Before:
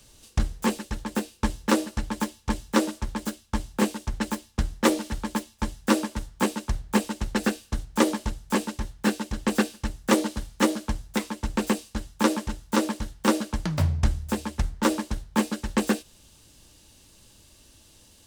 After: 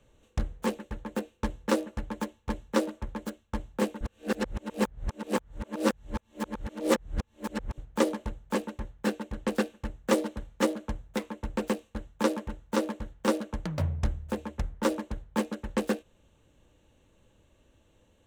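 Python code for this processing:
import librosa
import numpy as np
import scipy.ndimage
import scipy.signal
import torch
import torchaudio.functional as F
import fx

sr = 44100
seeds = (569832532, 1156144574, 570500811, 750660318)

y = fx.edit(x, sr, fx.reverse_span(start_s=4.01, length_s=3.77), tone=tone)
y = fx.wiener(y, sr, points=9)
y = fx.peak_eq(y, sr, hz=510.0, db=7.0, octaves=0.47)
y = F.gain(torch.from_numpy(y), -6.0).numpy()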